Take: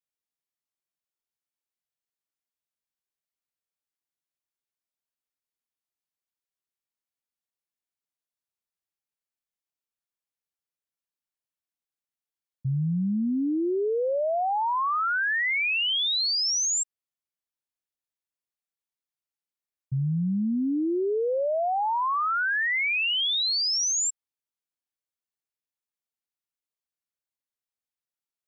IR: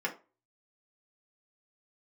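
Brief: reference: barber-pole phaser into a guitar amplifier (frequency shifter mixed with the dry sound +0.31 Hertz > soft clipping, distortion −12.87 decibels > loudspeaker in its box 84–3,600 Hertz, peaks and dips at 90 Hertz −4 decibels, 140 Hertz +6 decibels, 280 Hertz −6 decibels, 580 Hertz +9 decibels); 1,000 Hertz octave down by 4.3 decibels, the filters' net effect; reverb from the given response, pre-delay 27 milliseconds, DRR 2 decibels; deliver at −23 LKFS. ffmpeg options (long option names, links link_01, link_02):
-filter_complex "[0:a]equalizer=frequency=1000:width_type=o:gain=-7,asplit=2[link_01][link_02];[1:a]atrim=start_sample=2205,adelay=27[link_03];[link_02][link_03]afir=irnorm=-1:irlink=0,volume=-8.5dB[link_04];[link_01][link_04]amix=inputs=2:normalize=0,asplit=2[link_05][link_06];[link_06]afreqshift=0.31[link_07];[link_05][link_07]amix=inputs=2:normalize=1,asoftclip=threshold=-26dB,highpass=84,equalizer=frequency=90:width_type=q:width=4:gain=-4,equalizer=frequency=140:width_type=q:width=4:gain=6,equalizer=frequency=280:width_type=q:width=4:gain=-6,equalizer=frequency=580:width_type=q:width=4:gain=9,lowpass=frequency=3600:width=0.5412,lowpass=frequency=3600:width=1.3066,volume=7.5dB"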